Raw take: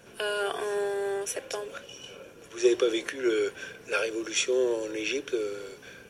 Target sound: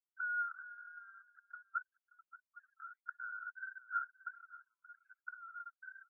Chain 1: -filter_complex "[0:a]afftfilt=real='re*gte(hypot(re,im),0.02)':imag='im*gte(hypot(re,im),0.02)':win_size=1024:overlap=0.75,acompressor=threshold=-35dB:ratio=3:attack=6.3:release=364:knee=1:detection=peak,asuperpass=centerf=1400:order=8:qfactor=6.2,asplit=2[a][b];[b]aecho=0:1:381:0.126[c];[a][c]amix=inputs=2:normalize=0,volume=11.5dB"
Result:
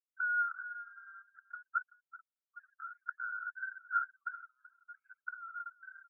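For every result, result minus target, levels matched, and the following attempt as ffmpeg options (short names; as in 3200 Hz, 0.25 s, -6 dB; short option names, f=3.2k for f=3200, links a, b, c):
echo 0.197 s early; compressor: peak gain reduction -5 dB
-filter_complex "[0:a]afftfilt=real='re*gte(hypot(re,im),0.02)':imag='im*gte(hypot(re,im),0.02)':win_size=1024:overlap=0.75,acompressor=threshold=-35dB:ratio=3:attack=6.3:release=364:knee=1:detection=peak,asuperpass=centerf=1400:order=8:qfactor=6.2,asplit=2[a][b];[b]aecho=0:1:578:0.126[c];[a][c]amix=inputs=2:normalize=0,volume=11.5dB"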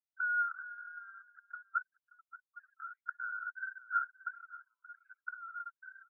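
compressor: peak gain reduction -5 dB
-filter_complex "[0:a]afftfilt=real='re*gte(hypot(re,im),0.02)':imag='im*gte(hypot(re,im),0.02)':win_size=1024:overlap=0.75,acompressor=threshold=-42.5dB:ratio=3:attack=6.3:release=364:knee=1:detection=peak,asuperpass=centerf=1400:order=8:qfactor=6.2,asplit=2[a][b];[b]aecho=0:1:578:0.126[c];[a][c]amix=inputs=2:normalize=0,volume=11.5dB"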